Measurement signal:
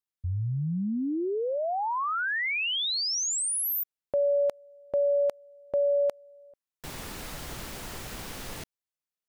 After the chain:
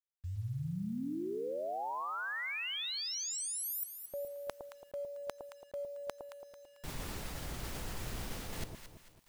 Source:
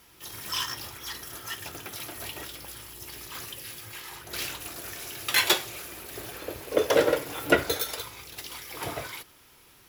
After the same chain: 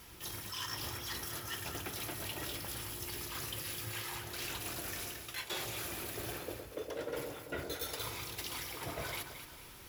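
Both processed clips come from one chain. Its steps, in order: bass shelf 140 Hz +7 dB; reverse; compression 20:1, threshold -39 dBFS; reverse; echo whose repeats swap between lows and highs 111 ms, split 910 Hz, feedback 62%, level -5 dB; bit crusher 11-bit; trim +1.5 dB

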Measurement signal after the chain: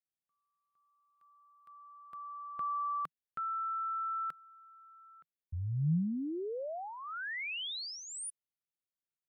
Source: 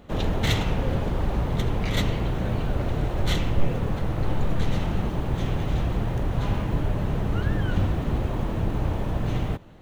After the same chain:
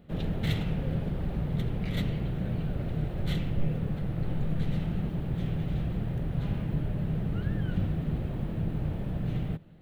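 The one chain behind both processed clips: fifteen-band graphic EQ 160 Hz +10 dB, 1 kHz -8 dB, 6.3 kHz -10 dB; trim -8.5 dB

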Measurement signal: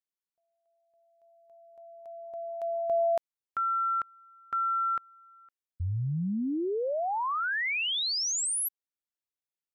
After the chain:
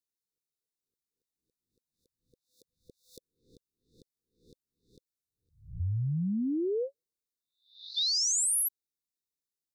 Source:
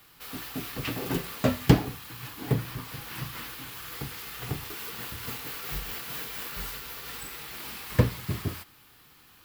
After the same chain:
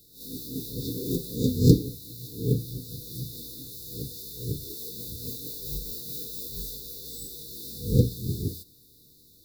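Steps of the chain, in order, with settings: reverse spectral sustain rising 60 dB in 0.43 s; brick-wall FIR band-stop 520–3500 Hz

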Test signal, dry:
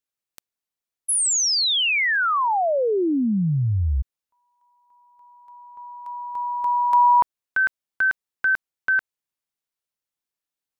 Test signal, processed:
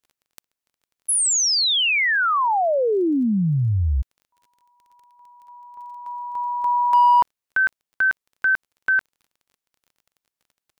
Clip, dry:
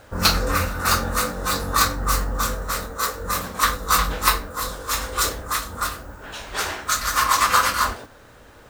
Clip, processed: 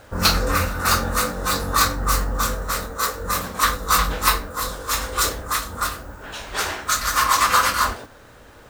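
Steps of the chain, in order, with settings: crackle 23 per s -46 dBFS; in parallel at -4 dB: hard clipper -13.5 dBFS; on the sum: trim -3 dB

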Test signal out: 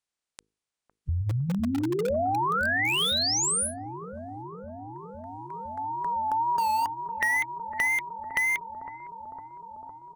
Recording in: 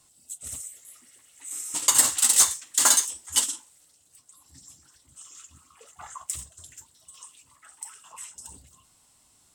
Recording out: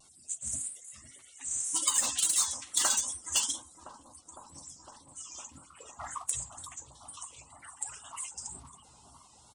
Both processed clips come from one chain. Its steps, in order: coarse spectral quantiser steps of 30 dB; dynamic bell 3.2 kHz, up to +5 dB, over -44 dBFS, Q 5.1; hum notches 50/100/150/200/250/300/350/400/450 Hz; resampled via 22.05 kHz; in parallel at -10 dB: integer overflow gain 17.5 dB; on the sum: compression 3:1, threshold -27 dBFS; wow and flutter 90 cents; on a send: bucket-brigade echo 507 ms, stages 4096, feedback 82%, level -10 dB

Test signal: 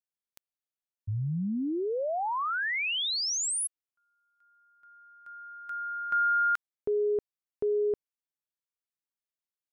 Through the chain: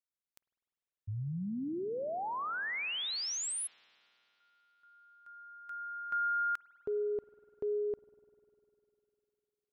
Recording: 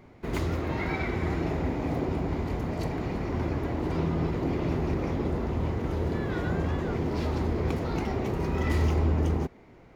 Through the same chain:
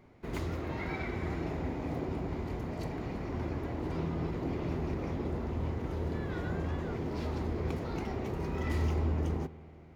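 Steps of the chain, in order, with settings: spring tank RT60 3.3 s, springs 50 ms, chirp 60 ms, DRR 16.5 dB; trim -6.5 dB

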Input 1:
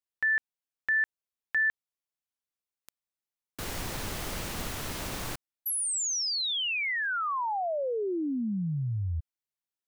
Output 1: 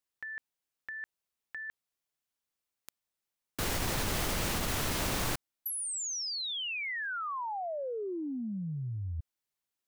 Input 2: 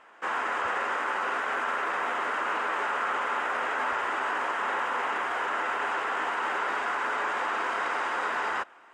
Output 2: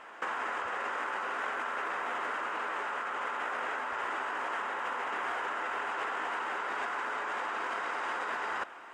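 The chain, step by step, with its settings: compressor with a negative ratio -35 dBFS, ratio -1

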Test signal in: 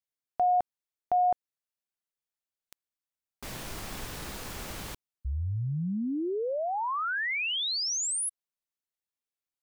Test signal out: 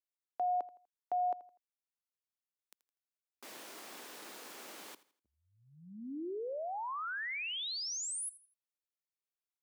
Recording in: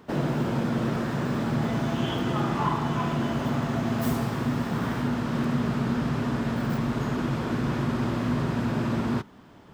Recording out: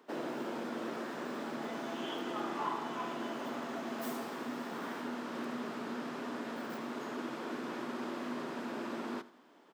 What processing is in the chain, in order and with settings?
high-pass 270 Hz 24 dB/octave; on a send: feedback delay 82 ms, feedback 34%, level -18 dB; on the sum: trim -8.5 dB

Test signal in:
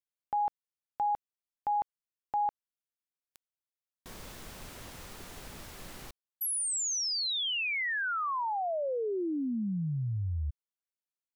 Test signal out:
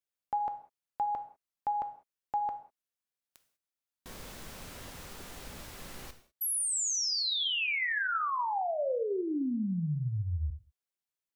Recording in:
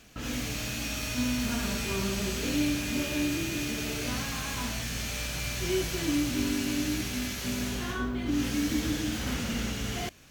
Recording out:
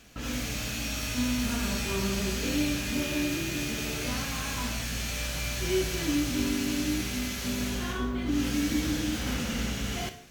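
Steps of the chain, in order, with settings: gated-style reverb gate 220 ms falling, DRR 7.5 dB

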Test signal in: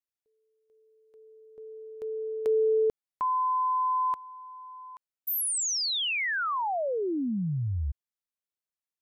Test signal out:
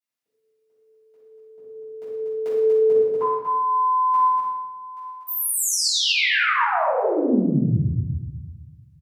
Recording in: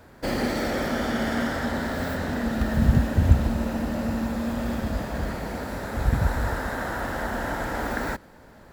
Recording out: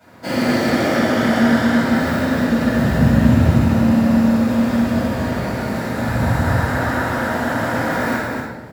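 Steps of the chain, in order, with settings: high-pass 85 Hz 24 dB/octave; bass shelf 250 Hz -3.5 dB; on a send: loudspeakers at several distances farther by 38 m -9 dB, 82 m -5 dB; on the sum: simulated room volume 490 m³, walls mixed, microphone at 7.3 m; trim -7 dB

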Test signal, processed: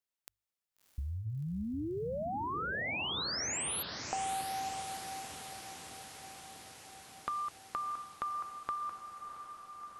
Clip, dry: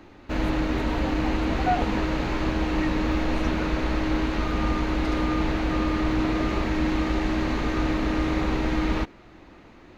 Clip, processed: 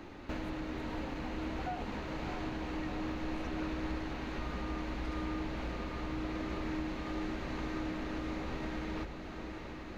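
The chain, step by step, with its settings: hum notches 50/100 Hz; compression 6:1, threshold -37 dBFS; on a send: echo that smears into a reverb 659 ms, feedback 72%, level -8 dB

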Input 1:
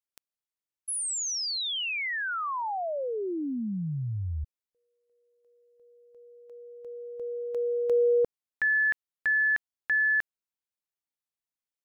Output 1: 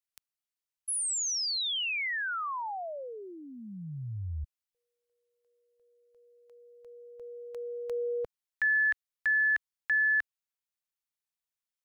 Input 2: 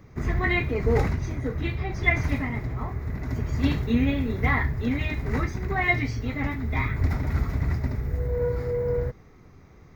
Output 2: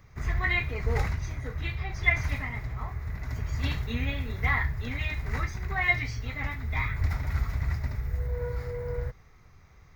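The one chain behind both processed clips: peaking EQ 290 Hz -14.5 dB 2.1 oct

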